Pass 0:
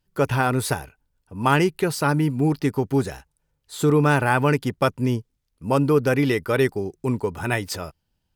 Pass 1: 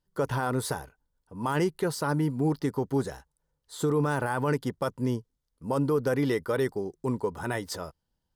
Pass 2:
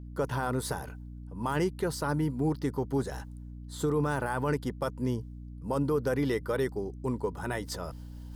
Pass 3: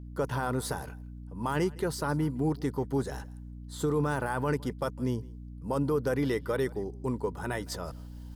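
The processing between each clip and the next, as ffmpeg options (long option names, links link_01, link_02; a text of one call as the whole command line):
ffmpeg -i in.wav -filter_complex "[0:a]equalizer=frequency=100:width_type=o:width=0.33:gain=-7,equalizer=frequency=500:width_type=o:width=0.33:gain=4,equalizer=frequency=1000:width_type=o:width=0.33:gain=4,equalizer=frequency=2500:width_type=o:width=0.33:gain=-11,equalizer=frequency=16000:width_type=o:width=0.33:gain=-7,acrossover=split=6600[link_01][link_02];[link_01]alimiter=limit=-12dB:level=0:latency=1:release=17[link_03];[link_03][link_02]amix=inputs=2:normalize=0,volume=-5.5dB" out.wav
ffmpeg -i in.wav -af "areverse,acompressor=mode=upward:threshold=-32dB:ratio=2.5,areverse,aeval=exprs='val(0)+0.0112*(sin(2*PI*60*n/s)+sin(2*PI*2*60*n/s)/2+sin(2*PI*3*60*n/s)/3+sin(2*PI*4*60*n/s)/4+sin(2*PI*5*60*n/s)/5)':channel_layout=same,volume=-2.5dB" out.wav
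ffmpeg -i in.wav -af "aecho=1:1:162:0.0668" out.wav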